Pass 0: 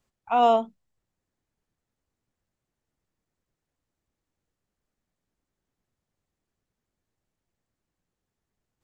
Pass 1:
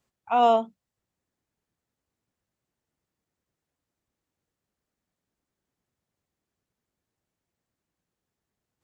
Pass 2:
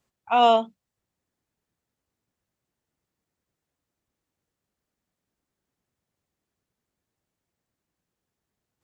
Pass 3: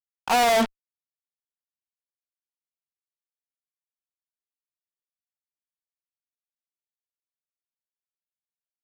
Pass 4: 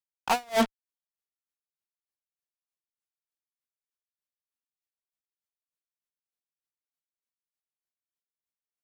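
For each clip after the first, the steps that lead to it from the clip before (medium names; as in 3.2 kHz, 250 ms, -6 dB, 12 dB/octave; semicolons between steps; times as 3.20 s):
high-pass 80 Hz 6 dB/octave
dynamic bell 3.3 kHz, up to +8 dB, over -42 dBFS, Q 0.74; trim +1 dB
fuzz box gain 44 dB, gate -41 dBFS; peak limiter -17 dBFS, peak gain reduction 5.5 dB
logarithmic tremolo 3.3 Hz, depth 33 dB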